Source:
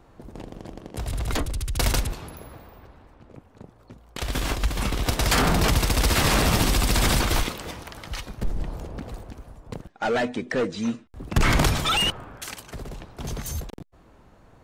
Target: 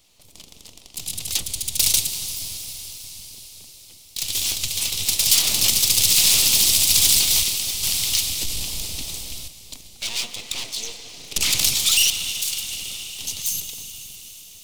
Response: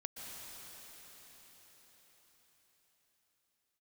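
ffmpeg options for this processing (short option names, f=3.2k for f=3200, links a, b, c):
-filter_complex "[0:a]asplit=2[a][b];[1:a]atrim=start_sample=2205,lowshelf=f=110:g=8.5[c];[b][c]afir=irnorm=-1:irlink=0,volume=-2dB[d];[a][d]amix=inputs=2:normalize=0,asettb=1/sr,asplit=3[e][f][g];[e]atrim=end=7.834[h];[f]atrim=start=7.83:end=9.48,asetpts=PTS-STARTPTS,afade=t=in:d=0.004:c=qsin,afade=t=out:st=1.646:d=0.004:c=qsin,acontrast=69[i];[g]atrim=start=9.476[j];[h][i]acrossfade=d=0.004:c1=hsin:c2=qsin[k];[k][j]acrossfade=d=0.004:c1=qsin:c2=hsin,aeval=exprs='abs(val(0))':c=same,aexciter=amount=11.9:drive=7.5:freq=2.5k,volume=-16dB"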